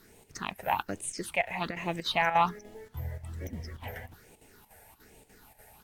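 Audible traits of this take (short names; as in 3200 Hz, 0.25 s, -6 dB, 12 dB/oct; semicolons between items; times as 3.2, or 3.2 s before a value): phasing stages 6, 1.2 Hz, lowest notch 300–1400 Hz; a quantiser's noise floor 10-bit, dither none; chopped level 3.4 Hz, depth 65%, duty 80%; AAC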